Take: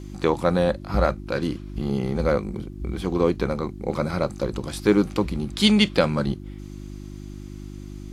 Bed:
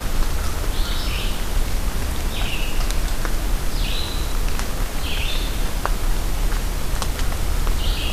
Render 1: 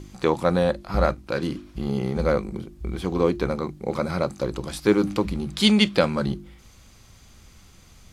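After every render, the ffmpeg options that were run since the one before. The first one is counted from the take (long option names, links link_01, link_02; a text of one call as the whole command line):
ffmpeg -i in.wav -af "bandreject=frequency=50:width_type=h:width=4,bandreject=frequency=100:width_type=h:width=4,bandreject=frequency=150:width_type=h:width=4,bandreject=frequency=200:width_type=h:width=4,bandreject=frequency=250:width_type=h:width=4,bandreject=frequency=300:width_type=h:width=4,bandreject=frequency=350:width_type=h:width=4" out.wav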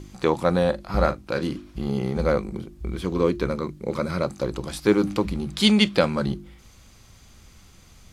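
ffmpeg -i in.wav -filter_complex "[0:a]asettb=1/sr,asplit=3[link_01][link_02][link_03];[link_01]atrim=end=0.684[link_04];[link_02]atrim=start=0.68:end=1.49,asetpts=PTS-STARTPTS,afade=type=in:duration=0.004:curve=qsin,afade=type=out:start_time=0.806:duration=0.004:curve=qsin,asplit=2[link_05][link_06];[link_06]adelay=39,volume=-12.5dB[link_07];[link_05][link_07]amix=inputs=2:normalize=0,atrim=end_sample=35721[link_08];[link_03]atrim=start=1.486[link_09];[link_04][link_08]acrossfade=duration=0.004:curve1=hsin:curve2=qsin[link_10];[link_10][link_09]acrossfade=duration=0.004:curve1=qsin:curve2=hsin,asettb=1/sr,asplit=3[link_11][link_12][link_13];[link_11]atrim=end=2.934[link_14];[link_12]atrim=start=2.93:end=4.25,asetpts=PTS-STARTPTS,afade=type=in:duration=0.004:curve=qsin,afade=type=out:start_time=1.316:duration=0.004:curve=qsin,equalizer=frequency=770:width=6.6:gain=-12[link_15];[link_13]atrim=start=4.246[link_16];[link_14][link_15]acrossfade=duration=0.004:curve1=hsin:curve2=qsin[link_17];[link_17][link_16]acrossfade=duration=0.004:curve1=qsin:curve2=hsin" out.wav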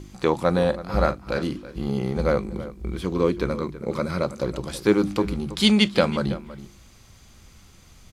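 ffmpeg -i in.wav -filter_complex "[0:a]asplit=2[link_01][link_02];[link_02]adelay=326.5,volume=-15dB,highshelf=frequency=4000:gain=-7.35[link_03];[link_01][link_03]amix=inputs=2:normalize=0" out.wav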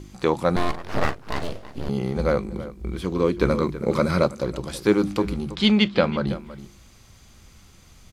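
ffmpeg -i in.wav -filter_complex "[0:a]asettb=1/sr,asplit=3[link_01][link_02][link_03];[link_01]atrim=end=0.564[link_04];[link_02]atrim=start=0.56:end=1.89,asetpts=PTS-STARTPTS,afade=type=in:duration=0.004:curve=qsin,afade=type=out:start_time=1.326:duration=0.004:curve=qsin,aeval=exprs='abs(val(0))':channel_layout=same[link_05];[link_03]atrim=start=1.886[link_06];[link_04][link_05]acrossfade=duration=0.004:curve1=hsin:curve2=qsin[link_07];[link_07][link_06]acrossfade=duration=0.004:curve1=qsin:curve2=hsin,asettb=1/sr,asplit=3[link_08][link_09][link_10];[link_08]atrim=end=3.414[link_11];[link_09]atrim=start=3.41:end=4.28,asetpts=PTS-STARTPTS,afade=type=in:duration=0.004:curve=qsin,afade=type=out:start_time=0.866:duration=0.004:curve=qsin,acontrast=35[link_12];[link_10]atrim=start=4.276[link_13];[link_11][link_12]acrossfade=duration=0.004:curve1=hsin:curve2=qsin[link_14];[link_14][link_13]acrossfade=duration=0.004:curve1=qsin:curve2=hsin,asplit=3[link_15][link_16][link_17];[link_15]afade=type=out:start_time=5.55:duration=0.02[link_18];[link_16]lowpass=3800,afade=type=in:start_time=5.55:duration=0.02,afade=type=out:start_time=6.26:duration=0.02[link_19];[link_17]afade=type=in:start_time=6.26:duration=0.02[link_20];[link_18][link_19][link_20]amix=inputs=3:normalize=0" out.wav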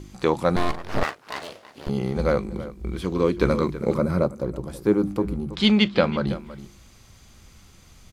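ffmpeg -i in.wav -filter_complex "[0:a]asettb=1/sr,asplit=3[link_01][link_02][link_03];[link_01]atrim=end=1.034[link_04];[link_02]atrim=start=1.03:end=1.87,asetpts=PTS-STARTPTS,afade=type=in:duration=0.004:curve=qsin,afade=type=out:start_time=0.836:duration=0.004:curve=qsin,highpass=frequency=880:poles=1[link_05];[link_03]atrim=start=1.866[link_06];[link_04][link_05]acrossfade=duration=0.004:curve1=hsin:curve2=qsin[link_07];[link_07][link_06]acrossfade=duration=0.004:curve1=qsin:curve2=hsin,asplit=3[link_08][link_09][link_10];[link_08]afade=type=out:start_time=3.93:duration=0.02[link_11];[link_09]equalizer=frequency=3900:width_type=o:width=2.9:gain=-14,afade=type=in:start_time=3.93:duration=0.02,afade=type=out:start_time=5.52:duration=0.02[link_12];[link_10]afade=type=in:start_time=5.52:duration=0.02[link_13];[link_11][link_12][link_13]amix=inputs=3:normalize=0" out.wav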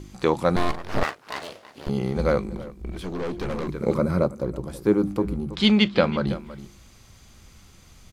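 ffmpeg -i in.wav -filter_complex "[0:a]asettb=1/sr,asplit=3[link_01][link_02][link_03];[link_01]atrim=end=2.554[link_04];[link_02]atrim=start=2.55:end=3.68,asetpts=PTS-STARTPTS,afade=type=in:duration=0.004:curve=qsin,afade=type=out:start_time=1.126:duration=0.004:curve=qsin,aeval=exprs='(tanh(20*val(0)+0.45)-tanh(0.45))/20':channel_layout=same[link_05];[link_03]atrim=start=3.676[link_06];[link_04][link_05]acrossfade=duration=0.004:curve1=hsin:curve2=qsin[link_07];[link_07][link_06]acrossfade=duration=0.004:curve1=qsin:curve2=hsin" out.wav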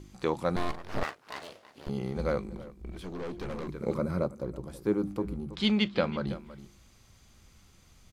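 ffmpeg -i in.wav -af "volume=-8dB" out.wav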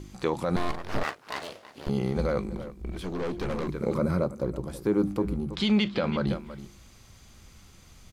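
ffmpeg -i in.wav -af "acontrast=53,alimiter=limit=-15dB:level=0:latency=1:release=50" out.wav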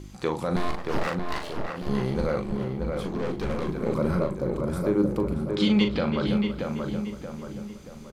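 ffmpeg -i in.wav -filter_complex "[0:a]asplit=2[link_01][link_02];[link_02]adelay=39,volume=-7.5dB[link_03];[link_01][link_03]amix=inputs=2:normalize=0,asplit=2[link_04][link_05];[link_05]adelay=629,lowpass=frequency=2200:poles=1,volume=-4dB,asplit=2[link_06][link_07];[link_07]adelay=629,lowpass=frequency=2200:poles=1,volume=0.46,asplit=2[link_08][link_09];[link_09]adelay=629,lowpass=frequency=2200:poles=1,volume=0.46,asplit=2[link_10][link_11];[link_11]adelay=629,lowpass=frequency=2200:poles=1,volume=0.46,asplit=2[link_12][link_13];[link_13]adelay=629,lowpass=frequency=2200:poles=1,volume=0.46,asplit=2[link_14][link_15];[link_15]adelay=629,lowpass=frequency=2200:poles=1,volume=0.46[link_16];[link_04][link_06][link_08][link_10][link_12][link_14][link_16]amix=inputs=7:normalize=0" out.wav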